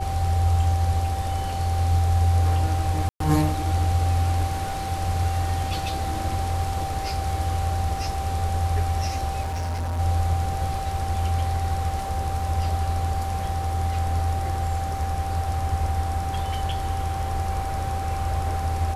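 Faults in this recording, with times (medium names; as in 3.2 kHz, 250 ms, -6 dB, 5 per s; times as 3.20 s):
whine 780 Hz -29 dBFS
3.09–3.20 s: dropout 113 ms
9.42–10.00 s: clipped -24.5 dBFS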